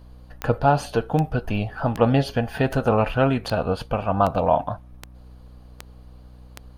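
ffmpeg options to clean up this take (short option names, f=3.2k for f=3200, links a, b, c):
-af "adeclick=t=4,bandreject=f=61.7:t=h:w=4,bandreject=f=123.4:t=h:w=4,bandreject=f=185.1:t=h:w=4,bandreject=f=246.8:t=h:w=4,bandreject=f=308.5:t=h:w=4"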